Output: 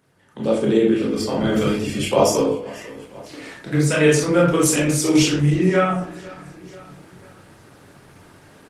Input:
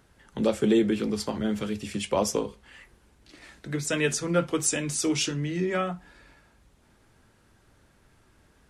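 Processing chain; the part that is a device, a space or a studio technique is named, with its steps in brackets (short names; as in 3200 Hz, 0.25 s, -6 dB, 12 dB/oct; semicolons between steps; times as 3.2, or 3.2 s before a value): feedback echo 0.492 s, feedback 43%, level -22.5 dB; far-field microphone of a smart speaker (reverb RT60 0.55 s, pre-delay 23 ms, DRR -3.5 dB; HPF 130 Hz 12 dB/oct; AGC gain up to 14.5 dB; gain -2.5 dB; Opus 20 kbps 48000 Hz)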